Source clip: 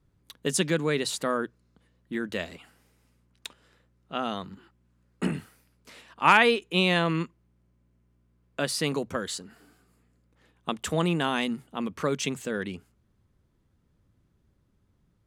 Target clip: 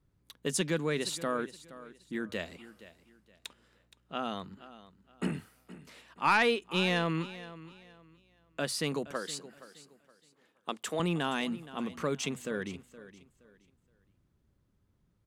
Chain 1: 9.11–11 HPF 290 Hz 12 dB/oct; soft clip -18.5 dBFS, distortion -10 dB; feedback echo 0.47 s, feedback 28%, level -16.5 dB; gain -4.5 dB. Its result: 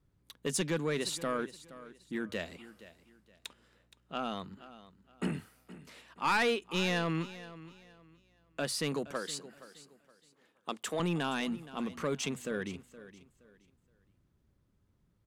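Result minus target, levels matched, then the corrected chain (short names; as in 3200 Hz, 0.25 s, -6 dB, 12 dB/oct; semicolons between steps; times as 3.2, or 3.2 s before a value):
soft clip: distortion +7 dB
9.11–11 HPF 290 Hz 12 dB/oct; soft clip -11 dBFS, distortion -16 dB; feedback echo 0.47 s, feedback 28%, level -16.5 dB; gain -4.5 dB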